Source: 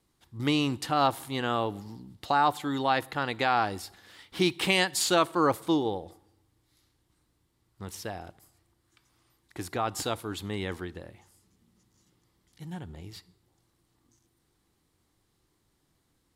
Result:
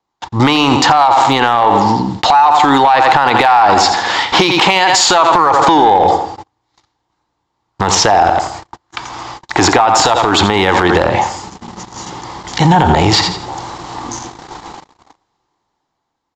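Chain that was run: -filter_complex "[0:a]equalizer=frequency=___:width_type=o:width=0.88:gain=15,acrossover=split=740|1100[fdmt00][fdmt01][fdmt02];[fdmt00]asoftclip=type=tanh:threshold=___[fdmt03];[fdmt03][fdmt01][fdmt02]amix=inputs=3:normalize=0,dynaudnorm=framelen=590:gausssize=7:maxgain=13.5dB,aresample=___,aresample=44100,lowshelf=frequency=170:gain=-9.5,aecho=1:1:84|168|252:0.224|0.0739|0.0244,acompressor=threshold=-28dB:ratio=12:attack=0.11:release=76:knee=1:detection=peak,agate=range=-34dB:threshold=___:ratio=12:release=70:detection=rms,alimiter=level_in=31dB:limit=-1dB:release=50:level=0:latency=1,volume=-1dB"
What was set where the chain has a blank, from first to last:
870, -24dB, 16000, -58dB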